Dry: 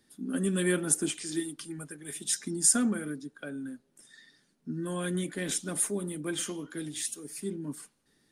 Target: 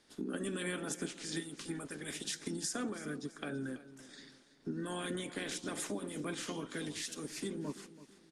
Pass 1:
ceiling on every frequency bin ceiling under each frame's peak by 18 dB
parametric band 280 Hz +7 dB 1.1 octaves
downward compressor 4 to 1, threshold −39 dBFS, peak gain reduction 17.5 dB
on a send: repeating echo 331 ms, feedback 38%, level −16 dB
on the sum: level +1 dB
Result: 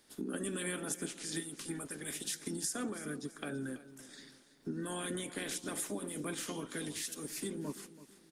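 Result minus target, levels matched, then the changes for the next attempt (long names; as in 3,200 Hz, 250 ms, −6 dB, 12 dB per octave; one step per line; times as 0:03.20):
8,000 Hz band +2.5 dB
add after ceiling on every frequency bin: low-pass filter 7,000 Hz 12 dB per octave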